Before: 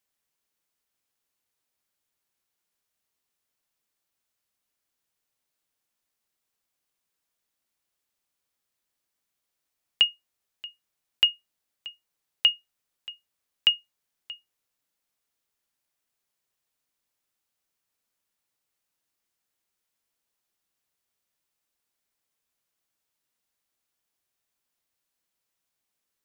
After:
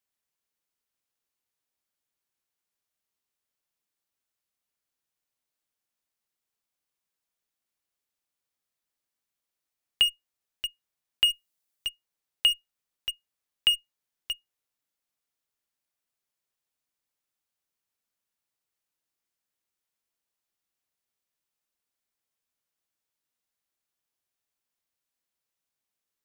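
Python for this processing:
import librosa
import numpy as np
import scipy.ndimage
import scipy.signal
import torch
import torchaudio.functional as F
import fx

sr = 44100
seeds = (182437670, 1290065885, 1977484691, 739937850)

p1 = fx.high_shelf(x, sr, hz=5100.0, db=7.5, at=(11.28, 11.87))
p2 = fx.fuzz(p1, sr, gain_db=40.0, gate_db=-40.0)
p3 = p1 + (p2 * librosa.db_to_amplitude(-8.0))
y = p3 * librosa.db_to_amplitude(-5.0)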